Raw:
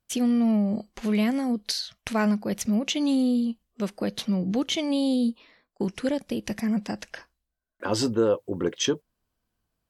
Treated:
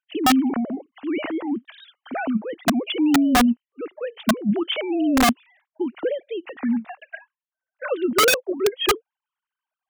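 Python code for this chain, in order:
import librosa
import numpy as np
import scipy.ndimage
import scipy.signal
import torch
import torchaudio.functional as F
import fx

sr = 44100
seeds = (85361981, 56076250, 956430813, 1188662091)

y = fx.sine_speech(x, sr)
y = (np.mod(10.0 ** (15.5 / 20.0) * y + 1.0, 2.0) - 1.0) / 10.0 ** (15.5 / 20.0)
y = y * 10.0 ** (4.0 / 20.0)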